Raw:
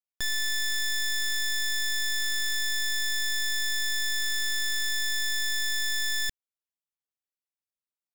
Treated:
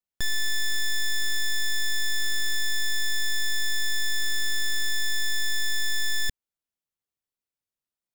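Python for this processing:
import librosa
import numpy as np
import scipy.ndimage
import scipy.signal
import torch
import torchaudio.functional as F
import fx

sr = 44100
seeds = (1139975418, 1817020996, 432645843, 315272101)

y = fx.low_shelf(x, sr, hz=400.0, db=7.5)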